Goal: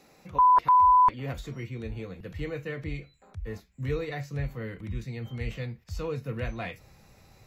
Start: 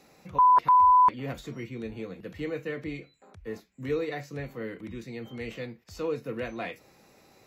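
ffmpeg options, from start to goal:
-af "asubboost=boost=9.5:cutoff=100"

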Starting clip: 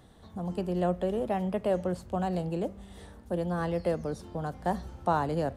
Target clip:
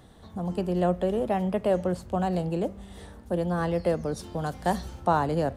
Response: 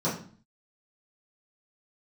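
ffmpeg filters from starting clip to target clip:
-filter_complex "[0:a]asplit=3[a][b][c];[a]afade=t=out:st=4.16:d=0.02[d];[b]adynamicequalizer=threshold=0.00398:dfrequency=2000:dqfactor=0.7:tfrequency=2000:tqfactor=0.7:attack=5:release=100:ratio=0.375:range=4:mode=boostabove:tftype=highshelf,afade=t=in:st=4.16:d=0.02,afade=t=out:st=4.99:d=0.02[e];[c]afade=t=in:st=4.99:d=0.02[f];[d][e][f]amix=inputs=3:normalize=0,volume=3.5dB"

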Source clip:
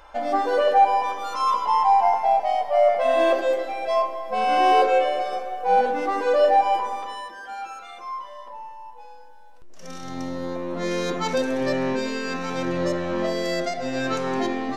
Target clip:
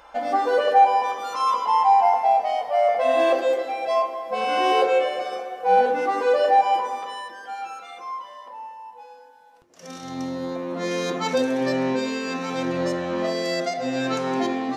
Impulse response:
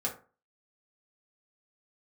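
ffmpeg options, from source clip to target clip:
-filter_complex "[0:a]highpass=f=130:p=1,asplit=2[a][b];[1:a]atrim=start_sample=2205[c];[b][c]afir=irnorm=-1:irlink=0,volume=-10.5dB[d];[a][d]amix=inputs=2:normalize=0,volume=-1.5dB"

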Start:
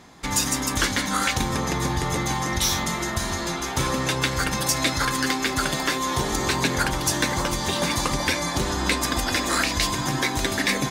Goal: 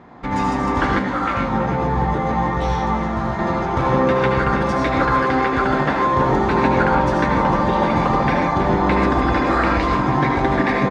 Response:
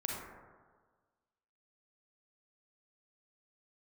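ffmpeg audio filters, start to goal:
-filter_complex "[0:a]lowpass=1.4k,lowshelf=f=65:g=-7.5,asplit=2[a][b];[b]adelay=326.5,volume=-9dB,highshelf=f=4k:g=-7.35[c];[a][c]amix=inputs=2:normalize=0[d];[1:a]atrim=start_sample=2205,atrim=end_sample=3969,asetrate=23373,aresample=44100[e];[d][e]afir=irnorm=-1:irlink=0,asettb=1/sr,asplit=3[f][g][h];[f]atrim=end=0.994[i];[g]atrim=start=0.99:end=3.39,asetpts=PTS-STARTPTS,afade=t=in:d=0.004:c=qsin,afade=t=out:st=2.396:d=0.004:c=qsin,flanger=delay=15.5:depth=3.4:speed=1.2[j];[h]atrim=start=3.386[k];[i][j]acrossfade=d=0.004:c1=hsin:c2=qsin[l];[l][k]acrossfade=d=0.004:c1=qsin:c2=hsin,volume=4.5dB"

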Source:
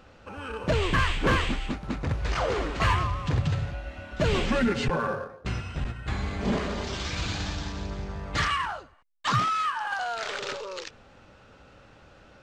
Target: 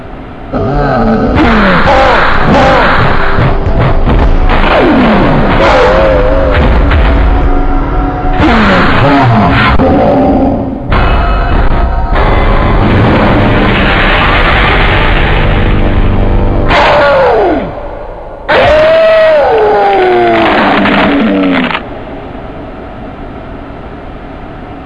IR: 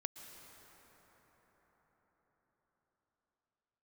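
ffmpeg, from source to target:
-filter_complex "[0:a]asplit=2[a][b];[1:a]atrim=start_sample=2205[c];[b][c]afir=irnorm=-1:irlink=0,volume=-11.5dB[d];[a][d]amix=inputs=2:normalize=0,apsyclip=30.5dB,asetrate=22050,aresample=44100,volume=-2dB"

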